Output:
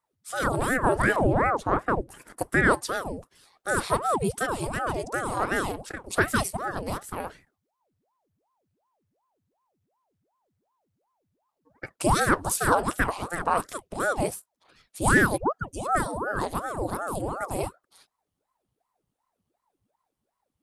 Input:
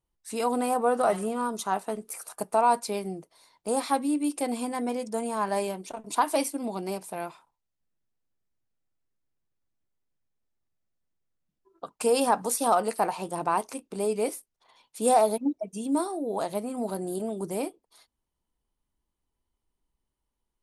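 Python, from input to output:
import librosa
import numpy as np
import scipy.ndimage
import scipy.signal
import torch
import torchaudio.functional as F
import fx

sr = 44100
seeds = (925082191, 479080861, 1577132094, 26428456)

y = fx.tilt_eq(x, sr, slope=-4.5, at=(1.16, 2.37))
y = fx.ring_lfo(y, sr, carrier_hz=570.0, swing_pct=85, hz=2.7)
y = y * librosa.db_to_amplitude(4.0)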